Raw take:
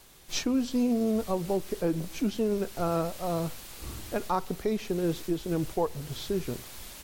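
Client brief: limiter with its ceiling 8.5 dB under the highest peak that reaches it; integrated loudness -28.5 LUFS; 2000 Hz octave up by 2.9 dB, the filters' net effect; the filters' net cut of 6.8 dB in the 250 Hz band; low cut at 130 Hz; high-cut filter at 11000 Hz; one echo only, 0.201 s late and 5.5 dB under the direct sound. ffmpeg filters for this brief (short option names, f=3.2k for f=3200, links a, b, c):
-af "highpass=130,lowpass=11k,equalizer=f=250:t=o:g=-8.5,equalizer=f=2k:t=o:g=4,alimiter=limit=-24dB:level=0:latency=1,aecho=1:1:201:0.531,volume=6dB"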